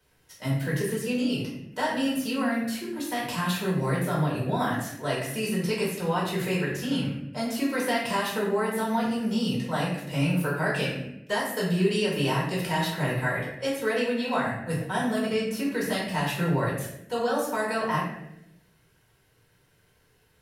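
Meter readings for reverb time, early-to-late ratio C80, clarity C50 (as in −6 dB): 0.80 s, 5.5 dB, 2.5 dB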